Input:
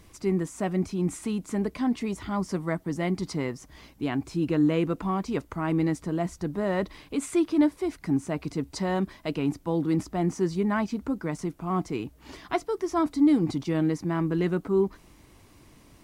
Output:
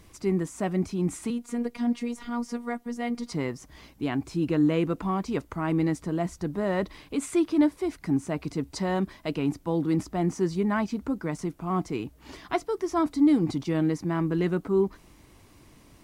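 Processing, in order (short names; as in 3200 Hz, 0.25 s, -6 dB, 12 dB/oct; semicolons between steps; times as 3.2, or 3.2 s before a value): 1.3–3.32 robotiser 239 Hz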